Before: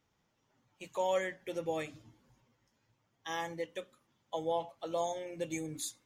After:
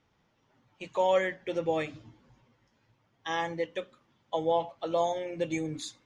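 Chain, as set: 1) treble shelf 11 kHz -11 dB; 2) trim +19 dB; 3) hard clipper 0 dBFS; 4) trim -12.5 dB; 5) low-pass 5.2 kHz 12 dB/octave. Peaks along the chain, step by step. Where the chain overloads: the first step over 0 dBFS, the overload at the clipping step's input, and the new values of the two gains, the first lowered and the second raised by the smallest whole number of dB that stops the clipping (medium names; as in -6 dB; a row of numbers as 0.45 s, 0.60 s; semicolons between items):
-21.5 dBFS, -2.5 dBFS, -2.5 dBFS, -15.0 dBFS, -15.0 dBFS; nothing clips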